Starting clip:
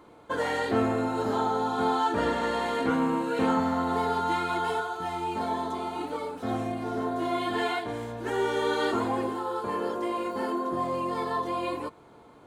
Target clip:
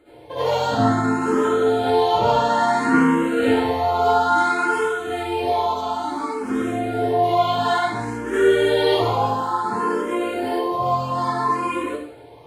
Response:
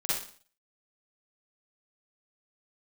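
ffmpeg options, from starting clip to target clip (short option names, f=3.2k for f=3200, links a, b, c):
-filter_complex "[1:a]atrim=start_sample=2205,asetrate=32634,aresample=44100[a];[0:a][a]afir=irnorm=-1:irlink=0,asplit=2[b][c];[c]afreqshift=0.58[d];[b][d]amix=inputs=2:normalize=1,volume=1.5dB"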